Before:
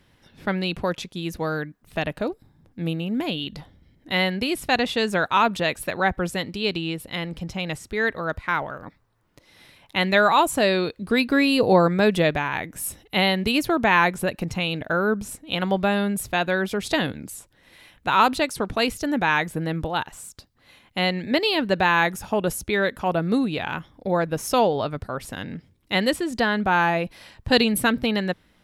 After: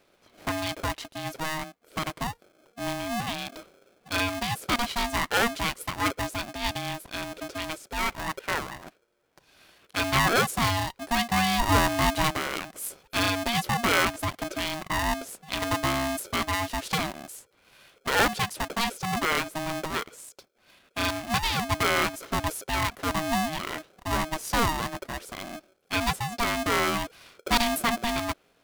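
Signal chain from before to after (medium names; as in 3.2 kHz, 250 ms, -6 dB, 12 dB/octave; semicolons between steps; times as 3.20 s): polarity switched at an audio rate 470 Hz; trim -5 dB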